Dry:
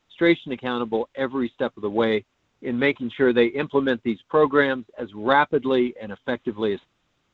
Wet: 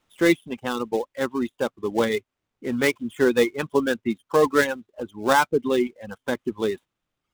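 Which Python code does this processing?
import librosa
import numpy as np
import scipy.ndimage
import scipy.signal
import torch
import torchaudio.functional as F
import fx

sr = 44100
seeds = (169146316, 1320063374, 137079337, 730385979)

y = fx.dead_time(x, sr, dead_ms=0.086)
y = fx.dereverb_blind(y, sr, rt60_s=1.0)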